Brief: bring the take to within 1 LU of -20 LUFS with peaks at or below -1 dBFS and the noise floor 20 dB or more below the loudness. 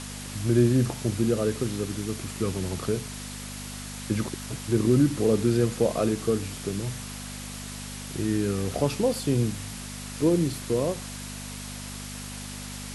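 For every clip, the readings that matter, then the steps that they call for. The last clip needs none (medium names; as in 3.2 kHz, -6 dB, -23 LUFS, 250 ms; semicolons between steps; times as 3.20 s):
hum 50 Hz; highest harmonic 250 Hz; hum level -38 dBFS; noise floor -38 dBFS; noise floor target -48 dBFS; loudness -27.5 LUFS; peak level -9.5 dBFS; loudness target -20.0 LUFS
-> de-hum 50 Hz, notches 5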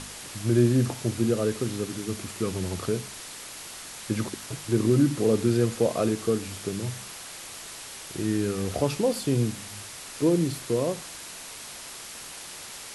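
hum not found; noise floor -41 dBFS; noise floor target -47 dBFS
-> noise reduction 6 dB, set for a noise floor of -41 dBFS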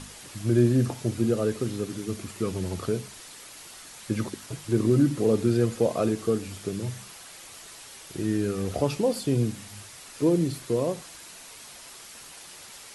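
noise floor -46 dBFS; noise floor target -47 dBFS
-> noise reduction 6 dB, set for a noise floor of -46 dBFS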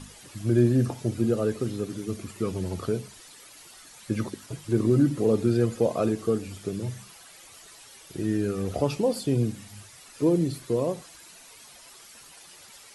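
noise floor -50 dBFS; loudness -27.0 LUFS; peak level -10.0 dBFS; loudness target -20.0 LUFS
-> trim +7 dB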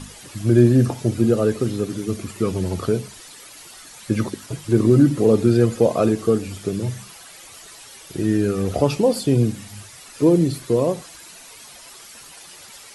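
loudness -20.0 LUFS; peak level -3.0 dBFS; noise floor -43 dBFS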